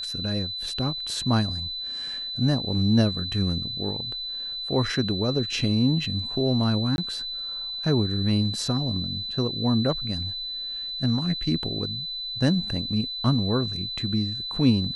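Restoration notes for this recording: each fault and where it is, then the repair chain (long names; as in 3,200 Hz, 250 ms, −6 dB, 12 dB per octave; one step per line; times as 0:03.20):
whistle 4,000 Hz −30 dBFS
0:06.96–0:06.98: drop-out 21 ms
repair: notch filter 4,000 Hz, Q 30
repair the gap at 0:06.96, 21 ms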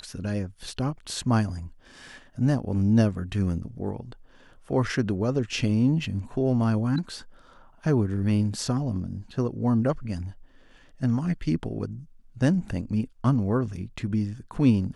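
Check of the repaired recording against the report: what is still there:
none of them is left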